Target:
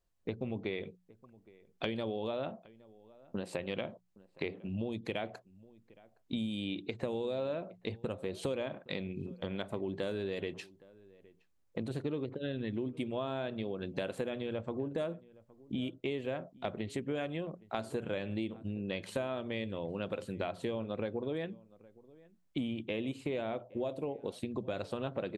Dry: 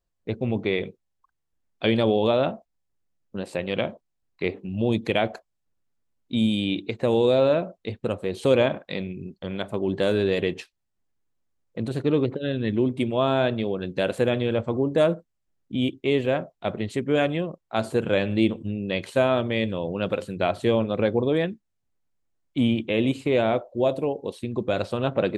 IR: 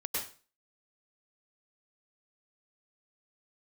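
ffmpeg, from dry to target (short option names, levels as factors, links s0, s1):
-filter_complex "[0:a]acompressor=threshold=0.02:ratio=6,bandreject=f=60:t=h:w=6,bandreject=f=120:t=h:w=6,bandreject=f=180:t=h:w=6,asplit=2[s0][s1];[s1]adelay=816.3,volume=0.0794,highshelf=f=4000:g=-18.4[s2];[s0][s2]amix=inputs=2:normalize=0"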